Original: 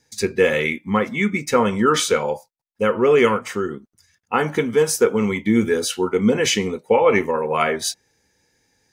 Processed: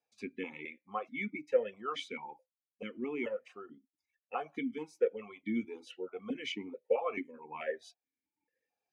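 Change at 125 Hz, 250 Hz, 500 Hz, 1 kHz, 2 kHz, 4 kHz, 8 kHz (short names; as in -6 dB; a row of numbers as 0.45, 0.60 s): -27.5 dB, -19.0 dB, -18.0 dB, -19.5 dB, -19.5 dB, -20.0 dB, under -30 dB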